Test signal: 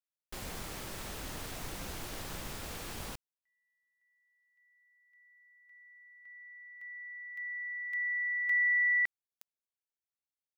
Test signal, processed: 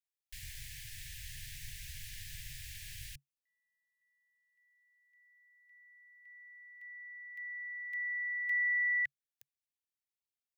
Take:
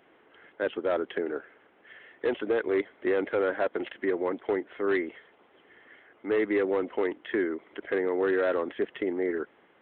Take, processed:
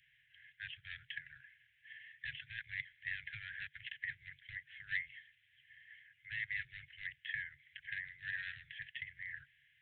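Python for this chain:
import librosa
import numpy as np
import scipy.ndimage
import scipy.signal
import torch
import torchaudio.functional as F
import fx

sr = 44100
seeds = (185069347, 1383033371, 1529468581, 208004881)

y = scipy.signal.sosfilt(scipy.signal.ellip(5, 1.0, 60, [140.0, 1700.0], 'bandstop', fs=sr, output='sos'), x)
y = F.gain(torch.from_numpy(y), -2.5).numpy()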